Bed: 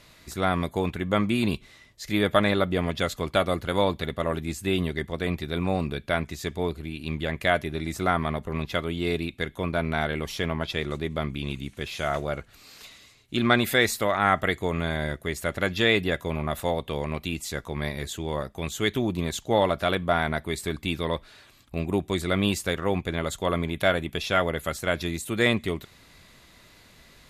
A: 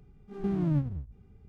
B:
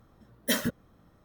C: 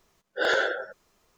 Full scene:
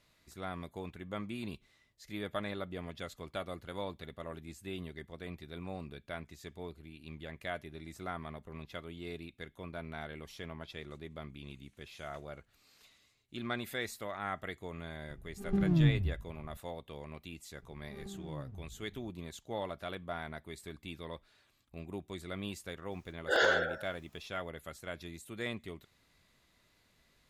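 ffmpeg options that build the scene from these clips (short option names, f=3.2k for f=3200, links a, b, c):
-filter_complex "[1:a]asplit=2[a][b];[0:a]volume=-16.5dB[c];[a]lowshelf=f=190:g=9.5[d];[b]acompressor=threshold=-41dB:ratio=6:attack=3.2:release=140:knee=1:detection=peak[e];[d]atrim=end=1.48,asetpts=PTS-STARTPTS,volume=-4.5dB,afade=t=in:d=0.004:c=hsin,afade=t=out:st=1.476:d=0.004:c=hsin,adelay=15090[f];[e]atrim=end=1.48,asetpts=PTS-STARTPTS,volume=-3dB,afade=t=in:d=0.004:c=hsin,afade=t=out:st=1.476:d=0.004:c=hsin,adelay=17620[g];[3:a]atrim=end=1.37,asetpts=PTS-STARTPTS,volume=-3.5dB,afade=t=in:d=0.004:c=hsin,afade=t=out:st=1.366:d=0.004:c=hsin,adelay=22910[h];[c][f][g][h]amix=inputs=4:normalize=0"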